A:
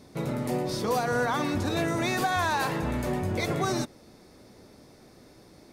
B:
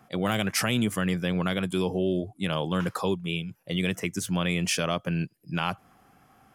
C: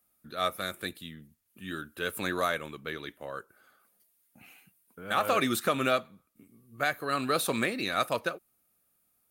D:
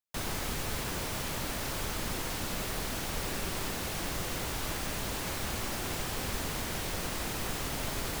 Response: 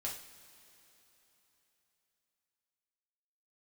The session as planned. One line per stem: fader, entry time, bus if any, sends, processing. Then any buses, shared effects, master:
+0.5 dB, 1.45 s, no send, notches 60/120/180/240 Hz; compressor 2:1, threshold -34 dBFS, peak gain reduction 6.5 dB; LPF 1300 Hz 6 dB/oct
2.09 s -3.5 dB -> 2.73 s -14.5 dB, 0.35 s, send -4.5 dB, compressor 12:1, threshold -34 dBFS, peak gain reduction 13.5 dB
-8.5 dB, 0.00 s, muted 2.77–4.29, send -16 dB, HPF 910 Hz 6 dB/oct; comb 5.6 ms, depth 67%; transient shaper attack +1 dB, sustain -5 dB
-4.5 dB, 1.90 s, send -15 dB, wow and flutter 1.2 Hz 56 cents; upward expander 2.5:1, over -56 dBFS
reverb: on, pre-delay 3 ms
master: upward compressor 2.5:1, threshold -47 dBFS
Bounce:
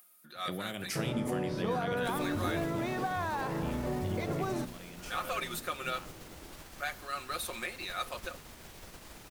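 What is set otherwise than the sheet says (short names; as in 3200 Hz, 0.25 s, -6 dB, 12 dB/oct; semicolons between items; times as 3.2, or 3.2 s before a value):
stem A: entry 1.45 s -> 0.80 s; stem C: missing transient shaper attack +1 dB, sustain -5 dB; stem D -4.5 dB -> -10.5 dB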